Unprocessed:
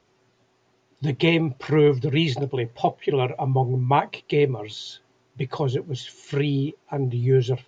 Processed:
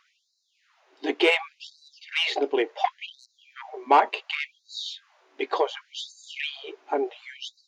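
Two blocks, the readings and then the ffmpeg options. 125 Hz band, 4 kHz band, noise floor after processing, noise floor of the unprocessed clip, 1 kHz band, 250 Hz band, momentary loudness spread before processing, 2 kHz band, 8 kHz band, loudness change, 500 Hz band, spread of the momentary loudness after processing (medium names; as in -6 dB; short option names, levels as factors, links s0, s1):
under -40 dB, +2.0 dB, -73 dBFS, -65 dBFS, +1.5 dB, -9.5 dB, 12 LU, +2.5 dB, no reading, -3.0 dB, -5.5 dB, 20 LU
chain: -filter_complex "[0:a]asplit=2[s0][s1];[s1]highpass=f=720:p=1,volume=5.01,asoftclip=type=tanh:threshold=0.473[s2];[s0][s2]amix=inputs=2:normalize=0,lowpass=f=2100:p=1,volume=0.501,afftfilt=real='re*gte(b*sr/1024,220*pow(3900/220,0.5+0.5*sin(2*PI*0.69*pts/sr)))':imag='im*gte(b*sr/1024,220*pow(3900/220,0.5+0.5*sin(2*PI*0.69*pts/sr)))':win_size=1024:overlap=0.75"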